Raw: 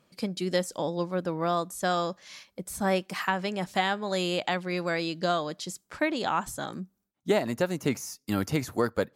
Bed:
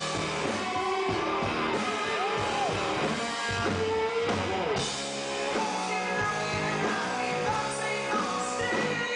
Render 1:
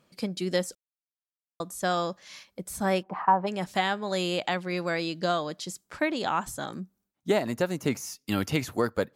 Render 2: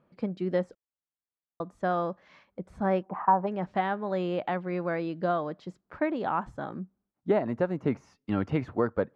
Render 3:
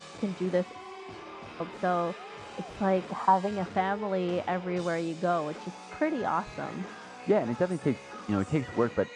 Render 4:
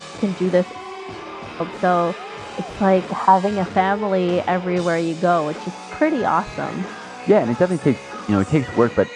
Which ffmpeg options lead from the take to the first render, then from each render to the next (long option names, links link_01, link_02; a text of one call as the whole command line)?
ffmpeg -i in.wav -filter_complex "[0:a]asplit=3[link_01][link_02][link_03];[link_01]afade=type=out:start_time=3.02:duration=0.02[link_04];[link_02]lowpass=frequency=910:width_type=q:width=3.4,afade=type=in:start_time=3.02:duration=0.02,afade=type=out:start_time=3.46:duration=0.02[link_05];[link_03]afade=type=in:start_time=3.46:duration=0.02[link_06];[link_04][link_05][link_06]amix=inputs=3:normalize=0,asettb=1/sr,asplit=3[link_07][link_08][link_09];[link_07]atrim=end=8.044[link_10];[link_08]atrim=start=8.04:end=8.73,asetpts=PTS-STARTPTS,afade=type=in:duration=0.004:curve=qsin,afade=type=out:start_time=0.686:duration=0.004:curve=qsin,equalizer=frequency=2900:width_type=o:width=0.82:gain=7[link_11];[link_09]atrim=start=8.726[link_12];[link_10][link_11]acrossfade=duration=0.004:curve1=hsin:curve2=qsin[link_13];[link_13][link_12]acrossfade=duration=0.004:curve1=qsin:curve2=hsin,asplit=3[link_14][link_15][link_16];[link_14]atrim=end=0.75,asetpts=PTS-STARTPTS,afade=type=out:start_time=0.746:duration=0.004:curve=hsin[link_17];[link_15]atrim=start=0.75:end=1.6,asetpts=PTS-STARTPTS,volume=0[link_18];[link_16]atrim=start=1.6,asetpts=PTS-STARTPTS,afade=type=in:duration=0.004:curve=hsin[link_19];[link_17][link_18][link_19]concat=n=3:v=0:a=1" out.wav
ffmpeg -i in.wav -af "lowpass=1400" out.wav
ffmpeg -i in.wav -i bed.wav -filter_complex "[1:a]volume=-15dB[link_01];[0:a][link_01]amix=inputs=2:normalize=0" out.wav
ffmpeg -i in.wav -af "volume=10.5dB,alimiter=limit=-3dB:level=0:latency=1" out.wav